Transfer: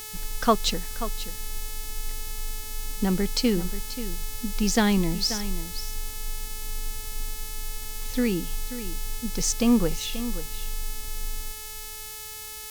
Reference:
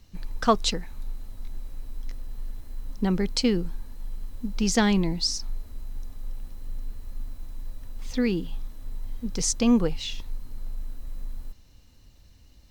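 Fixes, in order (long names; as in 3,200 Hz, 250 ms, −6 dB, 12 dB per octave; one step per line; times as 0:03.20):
hum removal 431.8 Hz, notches 36
broadband denoise 10 dB, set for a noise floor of −37 dBFS
echo removal 534 ms −12.5 dB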